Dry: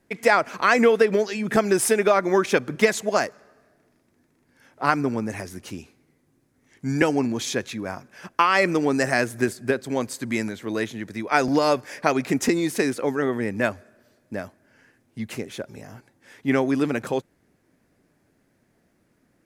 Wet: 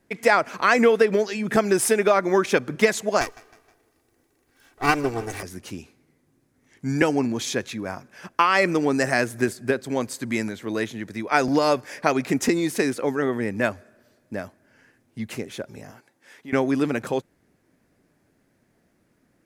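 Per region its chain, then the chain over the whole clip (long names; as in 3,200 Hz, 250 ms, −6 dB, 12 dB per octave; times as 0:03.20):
0:03.21–0:05.43: lower of the sound and its delayed copy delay 2.6 ms + high-shelf EQ 7,500 Hz +7 dB + repeating echo 157 ms, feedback 47%, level −21 dB
0:15.91–0:16.53: high-pass filter 430 Hz 6 dB per octave + downward compressor 2 to 1, threshold −42 dBFS
whole clip: no processing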